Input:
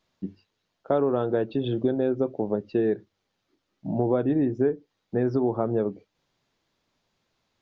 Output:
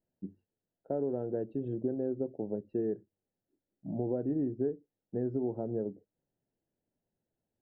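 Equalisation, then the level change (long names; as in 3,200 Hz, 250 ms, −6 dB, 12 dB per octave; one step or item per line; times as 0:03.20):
moving average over 38 samples
high-frequency loss of the air 150 metres
low-shelf EQ 110 Hz −5 dB
−6.5 dB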